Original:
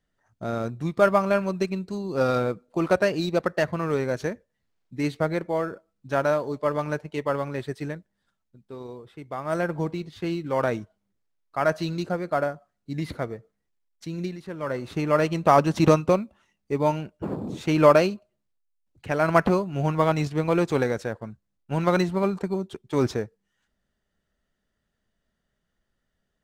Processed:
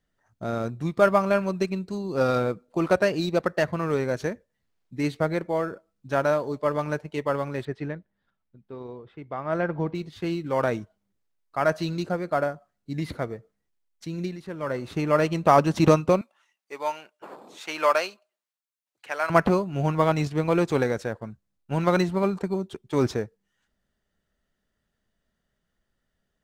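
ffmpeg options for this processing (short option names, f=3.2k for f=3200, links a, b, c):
-filter_complex "[0:a]asettb=1/sr,asplit=3[a][b][c];[a]atrim=end=7.654[d];[b]atrim=start=7.65:end=9.95,asetpts=PTS-STARTPTS,afade=t=in:d=0.004:c=qsin,afade=t=out:st=2.296:d=0.004:c=qsin,lowpass=3k[e];[c]atrim=start=9.946[f];[d][e]acrossfade=d=0.004:c1=hsin:c2=qsin[g];[g][f]acrossfade=d=0.004:c1=qsin:c2=hsin,asettb=1/sr,asplit=3[h][i][j];[h]atrim=end=16.214[k];[i]atrim=start=16.21:end=19.3,asetpts=PTS-STARTPTS,afade=t=in:d=0.004:c=qsin,afade=t=out:st=3.086:d=0.004:c=qsin,highpass=850[l];[j]atrim=start=19.296[m];[k][l]acrossfade=d=0.004:c1=hsin:c2=qsin[n];[n][m]acrossfade=d=0.004:c1=qsin:c2=hsin"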